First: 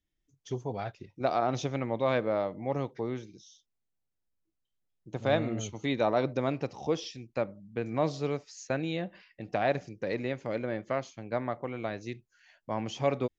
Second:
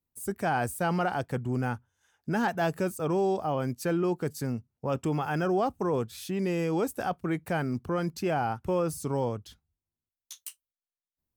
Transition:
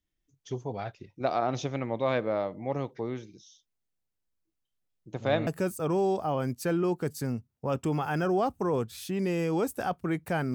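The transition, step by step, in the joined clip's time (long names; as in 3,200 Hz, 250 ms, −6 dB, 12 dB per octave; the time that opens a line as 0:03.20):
first
0:05.47: continue with second from 0:02.67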